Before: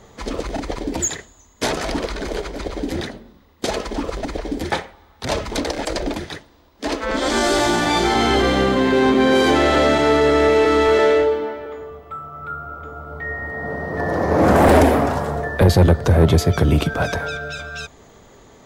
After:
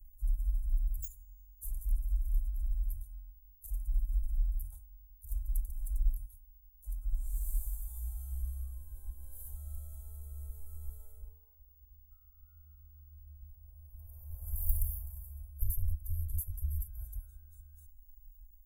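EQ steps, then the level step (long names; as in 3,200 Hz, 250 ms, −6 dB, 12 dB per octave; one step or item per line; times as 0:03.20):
inverse Chebyshev band-stop filter 140–5,300 Hz, stop band 60 dB
Butterworth band-reject 1,800 Hz, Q 5.1
+5.5 dB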